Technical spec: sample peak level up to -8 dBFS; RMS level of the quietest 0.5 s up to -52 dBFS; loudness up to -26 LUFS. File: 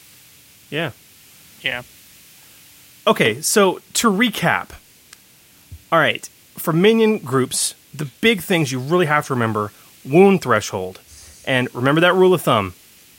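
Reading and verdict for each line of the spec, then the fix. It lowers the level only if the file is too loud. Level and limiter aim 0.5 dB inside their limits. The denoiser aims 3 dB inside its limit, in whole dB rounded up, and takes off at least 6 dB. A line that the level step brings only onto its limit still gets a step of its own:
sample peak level -1.5 dBFS: fail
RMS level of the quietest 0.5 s -50 dBFS: fail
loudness -17.5 LUFS: fail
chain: gain -9 dB

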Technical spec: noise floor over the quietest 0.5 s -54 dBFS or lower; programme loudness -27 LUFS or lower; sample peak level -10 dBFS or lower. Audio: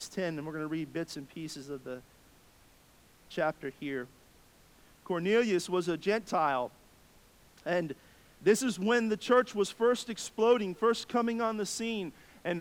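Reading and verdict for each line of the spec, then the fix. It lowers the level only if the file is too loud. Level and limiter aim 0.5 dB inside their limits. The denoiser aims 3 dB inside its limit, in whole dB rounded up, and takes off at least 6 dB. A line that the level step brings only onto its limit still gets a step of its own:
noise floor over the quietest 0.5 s -61 dBFS: OK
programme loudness -31.5 LUFS: OK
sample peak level -12.0 dBFS: OK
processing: none

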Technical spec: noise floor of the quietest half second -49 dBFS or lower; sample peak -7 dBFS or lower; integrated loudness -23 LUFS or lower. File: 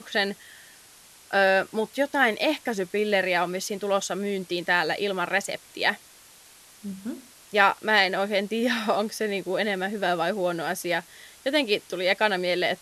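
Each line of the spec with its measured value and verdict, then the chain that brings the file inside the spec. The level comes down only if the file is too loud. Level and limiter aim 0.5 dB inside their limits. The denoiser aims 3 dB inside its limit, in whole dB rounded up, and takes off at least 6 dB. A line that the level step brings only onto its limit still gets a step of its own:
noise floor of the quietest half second -52 dBFS: OK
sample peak -5.0 dBFS: fail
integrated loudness -25.0 LUFS: OK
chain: limiter -7.5 dBFS

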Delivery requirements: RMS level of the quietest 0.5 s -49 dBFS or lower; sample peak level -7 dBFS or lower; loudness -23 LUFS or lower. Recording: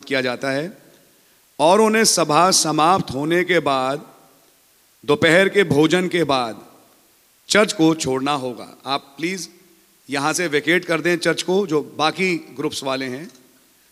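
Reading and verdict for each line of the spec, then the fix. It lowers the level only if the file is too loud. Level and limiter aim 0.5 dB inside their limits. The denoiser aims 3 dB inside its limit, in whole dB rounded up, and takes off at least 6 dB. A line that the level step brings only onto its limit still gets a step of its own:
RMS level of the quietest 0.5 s -56 dBFS: OK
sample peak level -1.5 dBFS: fail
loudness -18.5 LUFS: fail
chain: gain -5 dB; limiter -7.5 dBFS

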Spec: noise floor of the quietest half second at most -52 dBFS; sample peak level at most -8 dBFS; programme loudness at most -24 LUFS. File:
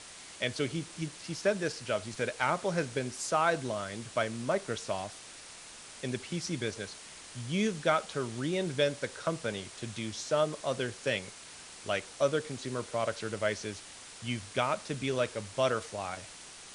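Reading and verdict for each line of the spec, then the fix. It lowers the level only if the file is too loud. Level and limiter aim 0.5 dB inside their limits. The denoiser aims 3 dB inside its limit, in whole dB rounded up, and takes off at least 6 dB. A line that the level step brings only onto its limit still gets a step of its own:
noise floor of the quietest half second -49 dBFS: fail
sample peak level -13.5 dBFS: OK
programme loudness -33.5 LUFS: OK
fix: denoiser 6 dB, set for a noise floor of -49 dBFS

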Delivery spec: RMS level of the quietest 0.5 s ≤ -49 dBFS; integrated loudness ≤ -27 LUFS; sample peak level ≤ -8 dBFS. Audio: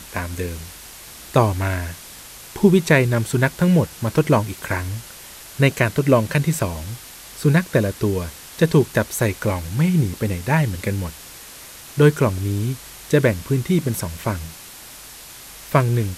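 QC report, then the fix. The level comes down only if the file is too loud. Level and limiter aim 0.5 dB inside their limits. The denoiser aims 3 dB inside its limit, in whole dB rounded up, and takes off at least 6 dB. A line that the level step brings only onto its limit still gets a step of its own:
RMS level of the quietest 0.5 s -40 dBFS: fail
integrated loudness -20.0 LUFS: fail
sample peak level -2.0 dBFS: fail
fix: denoiser 6 dB, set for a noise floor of -40 dBFS; gain -7.5 dB

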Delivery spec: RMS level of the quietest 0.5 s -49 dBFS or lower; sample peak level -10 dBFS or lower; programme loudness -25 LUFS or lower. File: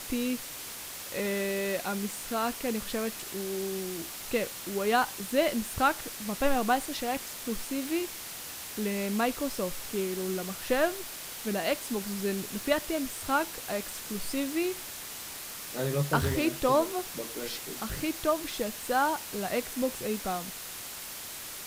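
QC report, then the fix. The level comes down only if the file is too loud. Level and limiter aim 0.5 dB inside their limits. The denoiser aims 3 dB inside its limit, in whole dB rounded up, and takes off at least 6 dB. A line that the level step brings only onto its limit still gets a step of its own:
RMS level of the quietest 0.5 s -41 dBFS: fail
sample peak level -11.5 dBFS: OK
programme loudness -31.5 LUFS: OK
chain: denoiser 11 dB, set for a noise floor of -41 dBFS

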